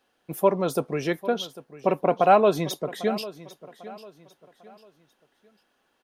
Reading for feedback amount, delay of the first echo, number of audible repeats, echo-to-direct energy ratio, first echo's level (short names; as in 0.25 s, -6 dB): 35%, 0.798 s, 2, -16.5 dB, -17.0 dB